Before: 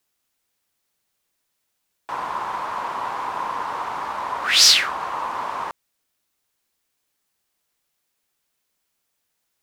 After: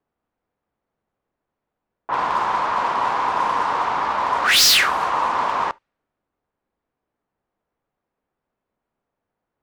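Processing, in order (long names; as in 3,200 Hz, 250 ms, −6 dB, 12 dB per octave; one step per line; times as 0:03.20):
low-pass that shuts in the quiet parts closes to 930 Hz, open at −20.5 dBFS
hard clipping −18.5 dBFS, distortion −6 dB
on a send: convolution reverb, pre-delay 4 ms, DRR 20 dB
on the sum: level +6.5 dB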